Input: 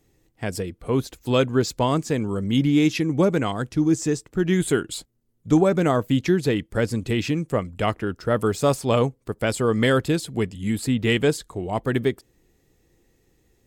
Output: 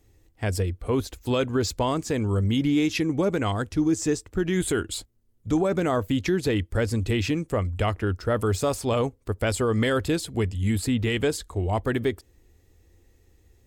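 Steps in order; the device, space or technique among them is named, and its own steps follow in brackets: car stereo with a boomy subwoofer (resonant low shelf 110 Hz +6 dB, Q 3; peak limiter -14.5 dBFS, peak gain reduction 7 dB)

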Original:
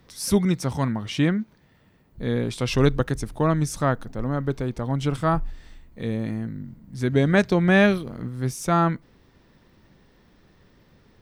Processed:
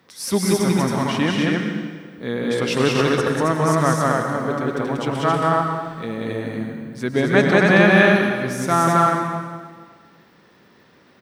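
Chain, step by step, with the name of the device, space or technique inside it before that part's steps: stadium PA (high-pass 180 Hz 12 dB/octave; peaking EQ 1.5 kHz +4 dB 2.2 oct; loudspeakers at several distances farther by 65 m -1 dB, 93 m -2 dB; reverberation RT60 1.6 s, pre-delay 97 ms, DRR 5 dB)

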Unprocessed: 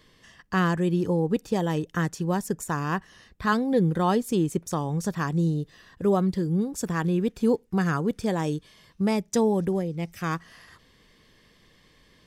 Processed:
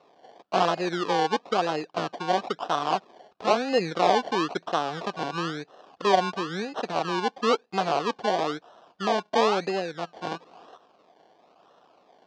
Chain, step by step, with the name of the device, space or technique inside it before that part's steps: circuit-bent sampling toy (decimation with a swept rate 27×, swing 60% 1 Hz; cabinet simulation 400–5200 Hz, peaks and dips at 720 Hz +9 dB, 1.2 kHz +3 dB, 2 kHz -8 dB); trim +2 dB

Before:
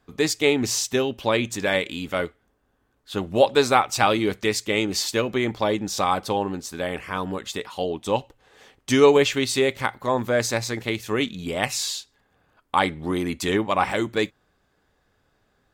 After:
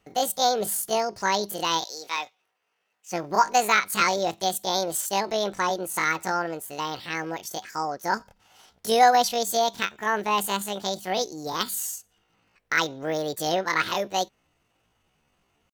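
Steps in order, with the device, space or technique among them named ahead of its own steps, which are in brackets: 1.84–3.13 s: frequency weighting A; chipmunk voice (pitch shift +9.5 st); trim -2.5 dB

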